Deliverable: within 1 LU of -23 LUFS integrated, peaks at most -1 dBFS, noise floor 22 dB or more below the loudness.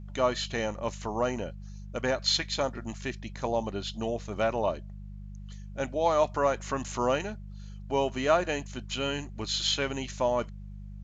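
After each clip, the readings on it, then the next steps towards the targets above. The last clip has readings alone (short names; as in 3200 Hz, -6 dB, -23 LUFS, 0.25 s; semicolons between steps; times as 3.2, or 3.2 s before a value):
hum 50 Hz; harmonics up to 200 Hz; hum level -39 dBFS; loudness -30.0 LUFS; peak -11.5 dBFS; loudness target -23.0 LUFS
-> de-hum 50 Hz, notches 4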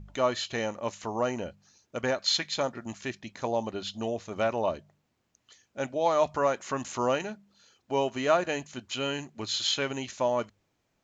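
hum none; loudness -30.0 LUFS; peak -11.5 dBFS; loudness target -23.0 LUFS
-> gain +7 dB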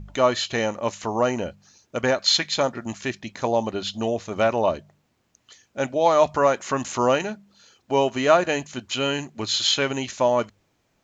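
loudness -23.0 LUFS; peak -4.5 dBFS; noise floor -69 dBFS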